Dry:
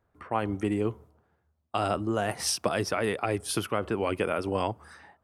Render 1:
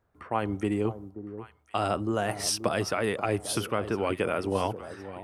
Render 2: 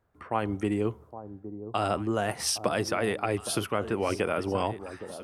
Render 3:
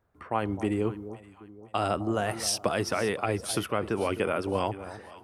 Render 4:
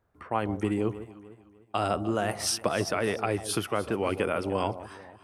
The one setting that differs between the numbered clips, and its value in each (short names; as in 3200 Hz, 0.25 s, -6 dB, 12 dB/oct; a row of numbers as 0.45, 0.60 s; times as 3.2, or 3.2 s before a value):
echo with dull and thin repeats by turns, time: 0.531, 0.814, 0.259, 0.15 s